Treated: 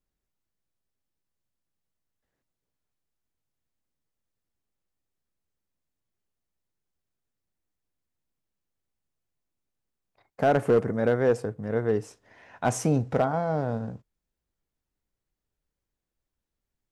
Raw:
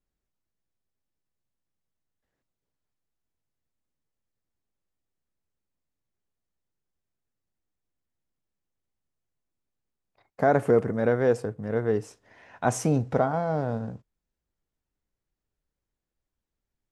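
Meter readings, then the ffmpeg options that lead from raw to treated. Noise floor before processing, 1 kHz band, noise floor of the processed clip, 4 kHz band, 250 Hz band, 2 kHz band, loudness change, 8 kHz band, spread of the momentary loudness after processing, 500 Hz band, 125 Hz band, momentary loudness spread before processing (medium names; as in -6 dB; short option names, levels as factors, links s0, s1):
under -85 dBFS, -0.5 dB, under -85 dBFS, no reading, -0.5 dB, -0.5 dB, -0.5 dB, 0.0 dB, 7 LU, -0.5 dB, 0.0 dB, 8 LU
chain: -af "asoftclip=type=hard:threshold=0.2"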